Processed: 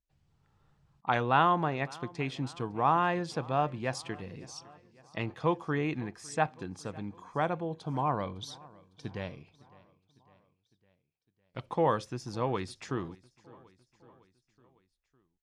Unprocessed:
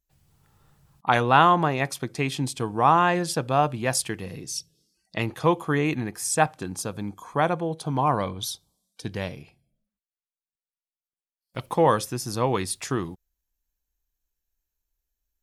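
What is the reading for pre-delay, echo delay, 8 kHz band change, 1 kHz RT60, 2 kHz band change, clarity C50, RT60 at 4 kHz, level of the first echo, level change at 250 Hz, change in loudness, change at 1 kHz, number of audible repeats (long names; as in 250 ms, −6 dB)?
no reverb audible, 556 ms, −17.5 dB, no reverb audible, −8.0 dB, no reverb audible, no reverb audible, −23.0 dB, −7.0 dB, −7.5 dB, −7.5 dB, 3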